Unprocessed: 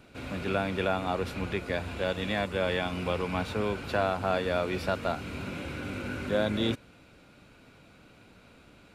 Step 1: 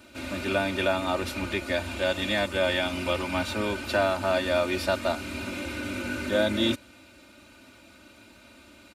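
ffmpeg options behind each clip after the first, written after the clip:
-af "highpass=62,highshelf=f=3.2k:g=8,aecho=1:1:3.3:0.92"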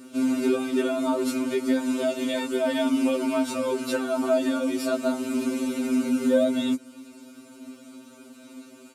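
-af "equalizer=f=125:t=o:w=1:g=-10,equalizer=f=250:t=o:w=1:g=9,equalizer=f=2k:t=o:w=1:g=-8,equalizer=f=4k:t=o:w=1:g=-5,equalizer=f=8k:t=o:w=1:g=5,acompressor=threshold=-27dB:ratio=2.5,afftfilt=real='re*2.45*eq(mod(b,6),0)':imag='im*2.45*eq(mod(b,6),0)':win_size=2048:overlap=0.75,volume=6dB"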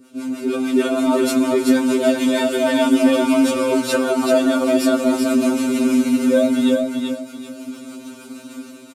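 -filter_complex "[0:a]dynaudnorm=f=410:g=3:m=12dB,acrossover=split=510[a][b];[a]aeval=exprs='val(0)*(1-0.7/2+0.7/2*cos(2*PI*6.5*n/s))':c=same[c];[b]aeval=exprs='val(0)*(1-0.7/2-0.7/2*cos(2*PI*6.5*n/s))':c=same[d];[c][d]amix=inputs=2:normalize=0,aecho=1:1:383|766|1149|1532:0.631|0.17|0.046|0.0124"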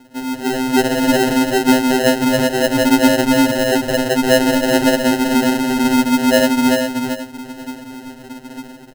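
-af "acrusher=samples=38:mix=1:aa=0.000001,volume=2dB"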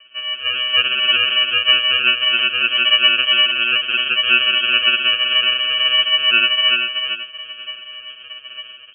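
-af "lowpass=f=2.7k:t=q:w=0.5098,lowpass=f=2.7k:t=q:w=0.6013,lowpass=f=2.7k:t=q:w=0.9,lowpass=f=2.7k:t=q:w=2.563,afreqshift=-3200,volume=-1.5dB"

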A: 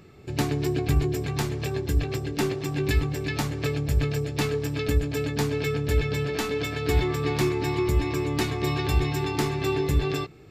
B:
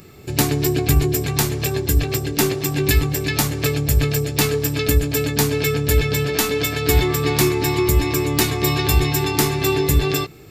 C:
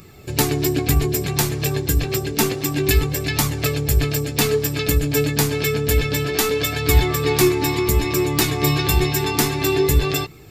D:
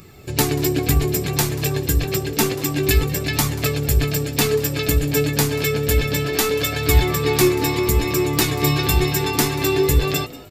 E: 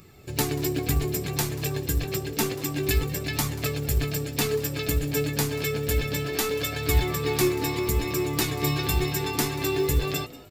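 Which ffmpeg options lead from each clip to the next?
-af "aemphasis=mode=production:type=50fm,volume=6.5dB"
-af "flanger=delay=0.8:depth=6.1:regen=59:speed=0.29:shape=triangular,volume=4dB"
-filter_complex "[0:a]asplit=4[a][b][c][d];[b]adelay=187,afreqshift=110,volume=-19.5dB[e];[c]adelay=374,afreqshift=220,volume=-27.2dB[f];[d]adelay=561,afreqshift=330,volume=-35dB[g];[a][e][f][g]amix=inputs=4:normalize=0"
-af "acrusher=bits=7:mode=log:mix=0:aa=0.000001,volume=-7dB"

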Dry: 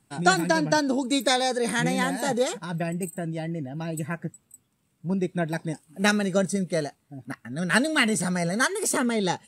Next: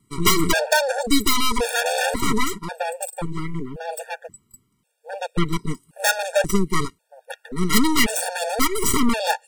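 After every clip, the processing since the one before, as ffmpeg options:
-af "aeval=exprs='(mod(3.55*val(0)+1,2)-1)/3.55':c=same,aeval=exprs='0.282*(cos(1*acos(clip(val(0)/0.282,-1,1)))-cos(1*PI/2))+0.0794*(cos(8*acos(clip(val(0)/0.282,-1,1)))-cos(8*PI/2))':c=same,afftfilt=real='re*gt(sin(2*PI*0.93*pts/sr)*(1-2*mod(floor(b*sr/1024/470),2)),0)':imag='im*gt(sin(2*PI*0.93*pts/sr)*(1-2*mod(floor(b*sr/1024/470),2)),0)':win_size=1024:overlap=0.75,volume=4.5dB"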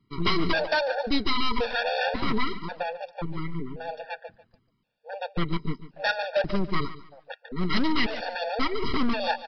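-af "aresample=11025,volume=13dB,asoftclip=hard,volume=-13dB,aresample=44100,aecho=1:1:144|288|432:0.178|0.0462|0.012,volume=-4.5dB"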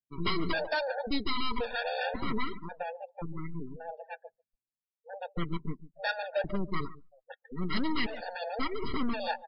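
-af "afftdn=nr=33:nf=-35,volume=-6dB"

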